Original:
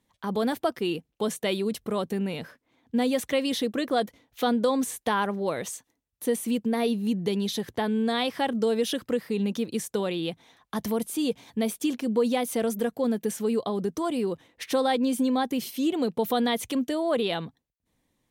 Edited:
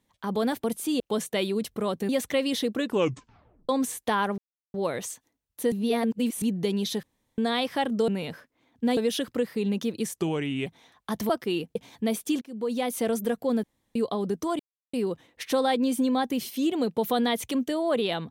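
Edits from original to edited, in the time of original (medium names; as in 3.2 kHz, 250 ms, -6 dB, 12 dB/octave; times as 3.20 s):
0.64–1.10 s: swap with 10.94–11.30 s
2.19–3.08 s: move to 8.71 s
3.77 s: tape stop 0.91 s
5.37 s: insert silence 0.36 s
6.35–7.05 s: reverse
7.66–8.01 s: room tone
9.91–10.31 s: speed 81%
11.96–12.50 s: fade in, from -21 dB
13.18–13.50 s: room tone
14.14 s: insert silence 0.34 s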